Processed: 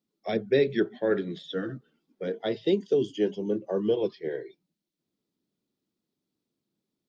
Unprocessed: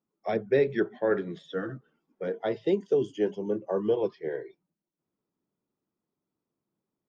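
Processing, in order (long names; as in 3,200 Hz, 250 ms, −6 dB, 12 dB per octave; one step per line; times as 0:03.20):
graphic EQ with 10 bands 250 Hz +4 dB, 1,000 Hz −6 dB, 4,000 Hz +10 dB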